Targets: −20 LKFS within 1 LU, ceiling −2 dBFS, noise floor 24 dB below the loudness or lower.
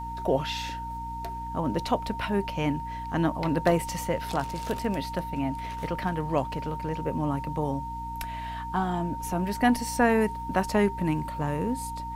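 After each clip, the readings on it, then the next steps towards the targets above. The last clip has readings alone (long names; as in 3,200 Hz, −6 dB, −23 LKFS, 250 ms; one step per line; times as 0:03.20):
mains hum 60 Hz; hum harmonics up to 300 Hz; level of the hum −37 dBFS; interfering tone 920 Hz; level of the tone −34 dBFS; integrated loudness −29.0 LKFS; sample peak −9.0 dBFS; target loudness −20.0 LKFS
→ mains-hum notches 60/120/180/240/300 Hz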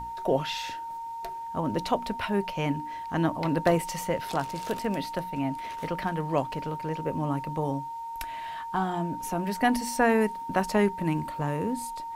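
mains hum none found; interfering tone 920 Hz; level of the tone −34 dBFS
→ notch filter 920 Hz, Q 30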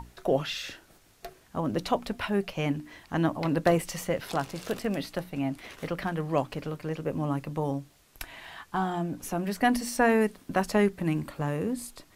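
interfering tone none found; integrated loudness −29.5 LKFS; sample peak −9.5 dBFS; target loudness −20.0 LKFS
→ level +9.5 dB
brickwall limiter −2 dBFS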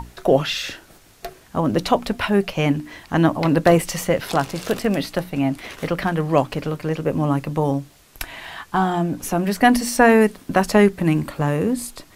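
integrated loudness −20.5 LKFS; sample peak −2.0 dBFS; background noise floor −51 dBFS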